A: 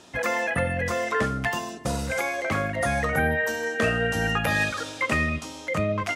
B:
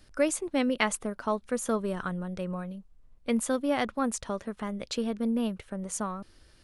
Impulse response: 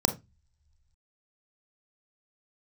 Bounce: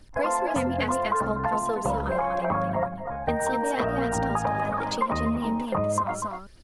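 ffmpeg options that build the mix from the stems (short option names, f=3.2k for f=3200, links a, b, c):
-filter_complex "[0:a]lowpass=f=970:t=q:w=5.7,volume=1dB,asplit=2[a][b];[b]volume=-13dB[c];[1:a]aphaser=in_gain=1:out_gain=1:delay=3.8:decay=0.55:speed=0.76:type=triangular,volume=0dB,asplit=3[d][e][f];[e]volume=-4.5dB[g];[f]apad=whole_len=271307[h];[a][h]sidechaingate=range=-33dB:threshold=-43dB:ratio=16:detection=peak[i];[c][g]amix=inputs=2:normalize=0,aecho=0:1:243:1[j];[i][d][j]amix=inputs=3:normalize=0,acompressor=threshold=-22dB:ratio=6"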